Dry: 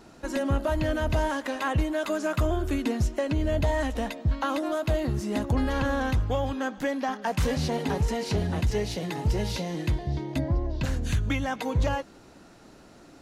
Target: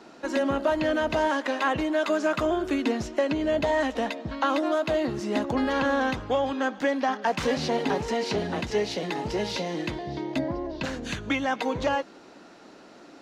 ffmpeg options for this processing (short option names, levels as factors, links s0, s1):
-filter_complex "[0:a]acrossover=split=200 6500:gain=0.0891 1 0.178[s0][s1][s2];[s0][s1][s2]amix=inputs=3:normalize=0,volume=1.58"